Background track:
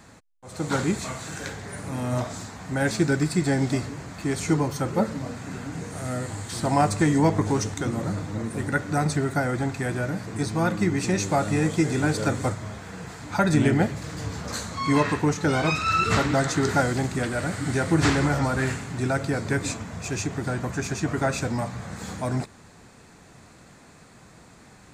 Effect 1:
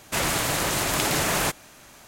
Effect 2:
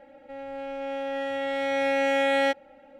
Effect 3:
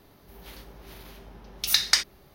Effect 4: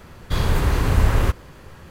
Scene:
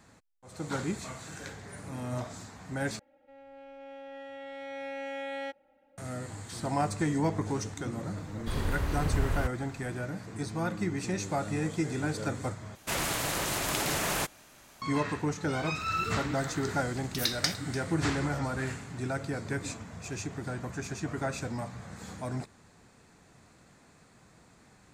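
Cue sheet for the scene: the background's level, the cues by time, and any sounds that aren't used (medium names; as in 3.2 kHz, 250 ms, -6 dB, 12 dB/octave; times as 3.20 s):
background track -8.5 dB
2.99 s: replace with 2 -14 dB + treble shelf 8.5 kHz -5.5 dB
8.16 s: add 4 -12 dB
12.75 s: replace with 1 -6.5 dB
15.51 s: add 3 -8.5 dB + delay 295 ms -17 dB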